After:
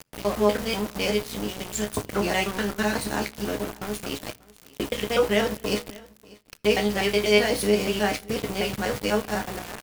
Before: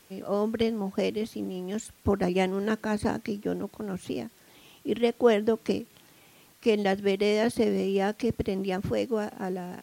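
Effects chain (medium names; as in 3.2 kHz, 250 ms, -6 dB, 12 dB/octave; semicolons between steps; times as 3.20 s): time reversed locally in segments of 123 ms; high-pass 71 Hz 12 dB/octave; tilt shelf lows -6.5 dB, about 750 Hz; in parallel at +2 dB: peak limiter -20 dBFS, peak gain reduction 9.5 dB; on the sum: chord resonator C#2 fifth, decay 0.22 s; hum 60 Hz, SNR 13 dB; small samples zeroed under -37 dBFS; delay 589 ms -23 dB; on a send at -21 dB: reverberation RT60 0.90 s, pre-delay 7 ms; on the sum: trim +7 dB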